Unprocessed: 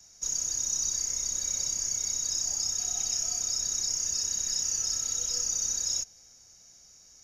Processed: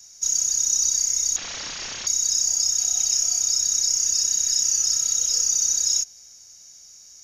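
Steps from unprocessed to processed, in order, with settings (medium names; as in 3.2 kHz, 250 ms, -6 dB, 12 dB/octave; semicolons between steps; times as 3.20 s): 1.36–2.07 s: CVSD coder 32 kbps; treble shelf 2 kHz +11.5 dB; trim -2 dB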